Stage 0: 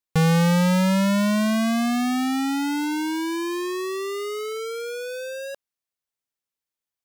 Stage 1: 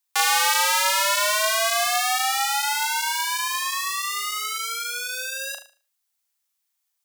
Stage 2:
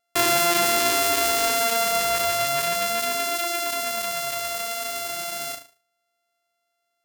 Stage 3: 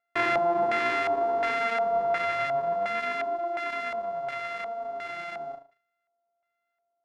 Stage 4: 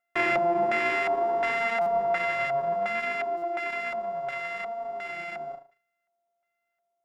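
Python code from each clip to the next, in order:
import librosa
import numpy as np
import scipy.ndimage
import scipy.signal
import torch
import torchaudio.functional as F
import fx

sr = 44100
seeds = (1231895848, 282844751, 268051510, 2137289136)

y1 = scipy.signal.sosfilt(scipy.signal.butter(8, 670.0, 'highpass', fs=sr, output='sos'), x)
y1 = fx.high_shelf(y1, sr, hz=4300.0, db=9.0)
y1 = fx.room_flutter(y1, sr, wall_m=6.4, rt60_s=0.37)
y1 = F.gain(torch.from_numpy(y1), 4.5).numpy()
y2 = np.r_[np.sort(y1[:len(y1) // 64 * 64].reshape(-1, 64), axis=1).ravel(), y1[len(y1) // 64 * 64:]]
y3 = fx.peak_eq(y2, sr, hz=68.0, db=-14.5, octaves=0.58)
y3 = fx.filter_lfo_lowpass(y3, sr, shape='square', hz=1.4, low_hz=800.0, high_hz=2100.0, q=2.1)
y3 = fx.peak_eq(y3, sr, hz=2800.0, db=-4.5, octaves=0.32)
y3 = F.gain(torch.from_numpy(y3), -5.5).numpy()
y4 = fx.notch(y3, sr, hz=4400.0, q=6.5)
y4 = y4 + 0.49 * np.pad(y4, (int(5.4 * sr / 1000.0), 0))[:len(y4)]
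y4 = fx.buffer_glitch(y4, sr, at_s=(1.81, 3.37), block=256, repeats=8)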